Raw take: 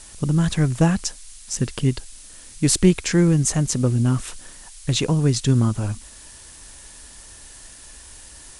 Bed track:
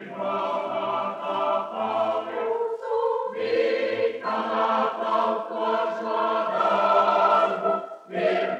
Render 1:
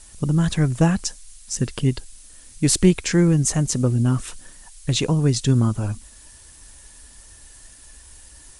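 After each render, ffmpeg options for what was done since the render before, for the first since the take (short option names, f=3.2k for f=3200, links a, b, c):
-af "afftdn=nr=6:nf=-44"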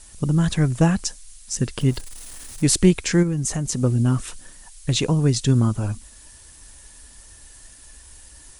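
-filter_complex "[0:a]asettb=1/sr,asplit=3[a][b][c];[a]atrim=end=1.804[d];[b]atrim=start=1.8:end=2.64,asetpts=PTS-STARTPTS,afade=t=in:d=0.004:c=qsin,afade=t=out:st=0.836:d=0.004:c=qsin,aeval=exprs='val(0)+0.5*0.0158*sgn(val(0))':c=same[e];[c]atrim=start=2.636[f];[d][e]acrossfade=d=0.004:c1=hsin:c2=qsin[g];[g][f]acrossfade=d=0.004:c1=qsin:c2=hsin,asplit=3[h][i][j];[h]afade=t=out:st=3.22:d=0.02[k];[i]acompressor=threshold=-20dB:ratio=5:attack=3.2:release=140:knee=1:detection=peak,afade=t=in:st=3.22:d=0.02,afade=t=out:st=3.81:d=0.02[l];[j]afade=t=in:st=3.81:d=0.02[m];[k][l][m]amix=inputs=3:normalize=0"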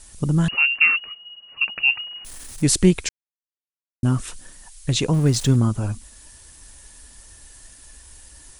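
-filter_complex "[0:a]asettb=1/sr,asplit=3[a][b][c];[a]atrim=end=0.484[d];[b]atrim=start=0.48:end=2.25,asetpts=PTS-STARTPTS,afade=t=in:d=0.004:c=qsin,afade=t=out:st=1.766:d=0.004:c=qsin,lowpass=f=2.5k:t=q:w=0.5098,lowpass=f=2.5k:t=q:w=0.6013,lowpass=f=2.5k:t=q:w=0.9,lowpass=f=2.5k:t=q:w=2.563,afreqshift=-2900[e];[c]atrim=start=2.246[f];[d][e]acrossfade=d=0.004:c1=hsin:c2=qsin[g];[g][f]acrossfade=d=0.004:c1=qsin:c2=hsin,asettb=1/sr,asplit=3[h][i][j];[h]atrim=end=5.134[k];[i]atrim=start=5.13:end=5.56,asetpts=PTS-STARTPTS,afade=t=in:d=0.004:c=qsin,afade=t=out:st=0.426:d=0.004:c=qsin,aeval=exprs='val(0)+0.5*0.0282*sgn(val(0))':c=same[l];[j]atrim=start=5.556[m];[k][l]acrossfade=d=0.004:c1=hsin:c2=qsin[n];[n][m]acrossfade=d=0.004:c1=qsin:c2=hsin,asplit=3[o][p][q];[o]atrim=end=3.09,asetpts=PTS-STARTPTS,afade=t=out:st=3.086:d=0.004:c=hsin[r];[p]atrim=start=3.09:end=4.03,asetpts=PTS-STARTPTS,volume=0[s];[q]atrim=start=4.03,asetpts=PTS-STARTPTS,afade=t=in:d=0.004:c=hsin[t];[r][s][t]concat=n=3:v=0:a=1"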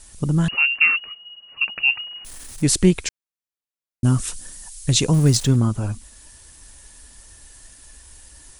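-filter_complex "[0:a]asettb=1/sr,asplit=3[a][b][c];[a]atrim=end=4.044[d];[b]atrim=start=4.04:end=5.37,asetpts=PTS-STARTPTS,afade=t=in:d=0.004:c=qsin,afade=t=out:st=1.326:d=0.004:c=qsin,bass=f=250:g=3,treble=f=4k:g=8[e];[c]atrim=start=5.366[f];[d][e]acrossfade=d=0.004:c1=hsin:c2=qsin[g];[g][f]acrossfade=d=0.004:c1=qsin:c2=hsin"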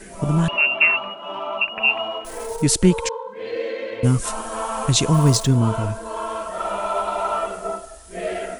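-filter_complex "[1:a]volume=-4dB[a];[0:a][a]amix=inputs=2:normalize=0"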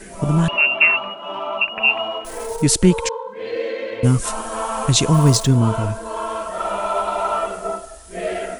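-af "volume=2dB,alimiter=limit=-1dB:level=0:latency=1"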